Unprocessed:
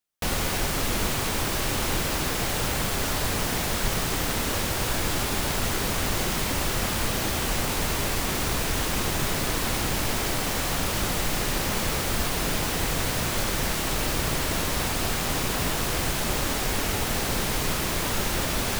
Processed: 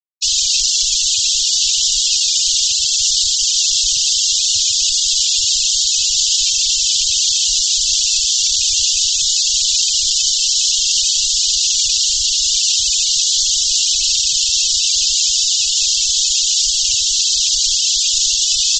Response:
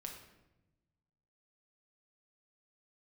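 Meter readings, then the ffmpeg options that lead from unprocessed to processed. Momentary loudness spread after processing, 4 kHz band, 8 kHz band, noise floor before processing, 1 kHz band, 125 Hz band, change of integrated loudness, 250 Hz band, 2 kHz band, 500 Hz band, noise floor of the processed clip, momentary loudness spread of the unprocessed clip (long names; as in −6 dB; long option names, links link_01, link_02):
0 LU, +18.0 dB, +18.0 dB, −28 dBFS, below −40 dB, below −15 dB, +13.5 dB, below −35 dB, −3.5 dB, below −40 dB, −17 dBFS, 0 LU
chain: -filter_complex "[0:a]asplit=2[link_01][link_02];[link_02]aecho=0:1:55|89|378:0.141|0.178|0.158[link_03];[link_01][link_03]amix=inputs=2:normalize=0,aeval=exprs='0.1*(abs(mod(val(0)/0.1+3,4)-2)-1)':channel_layout=same,aexciter=amount=9.6:drive=9:freq=2600,afftfilt=real='re*gte(hypot(re,im),0.398)':imag='im*gte(hypot(re,im),0.398)':win_size=1024:overlap=0.75,aresample=16000,aresample=44100,volume=-3.5dB"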